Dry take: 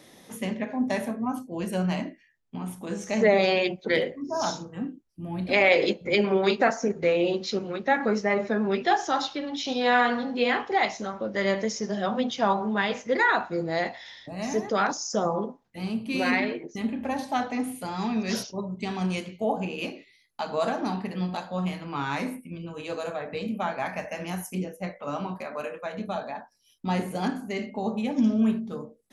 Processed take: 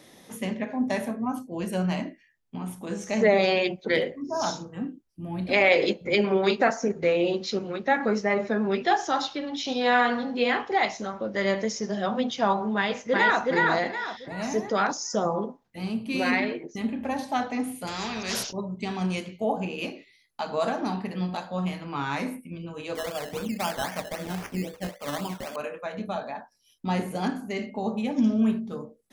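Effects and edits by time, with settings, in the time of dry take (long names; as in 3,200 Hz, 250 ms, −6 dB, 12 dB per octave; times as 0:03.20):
0:12.76–0:13.42: delay throw 370 ms, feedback 35%, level −1.5 dB
0:17.87–0:18.53: every bin compressed towards the loudest bin 2 to 1
0:22.95–0:25.56: sample-and-hold swept by an LFO 15×, swing 60% 3.8 Hz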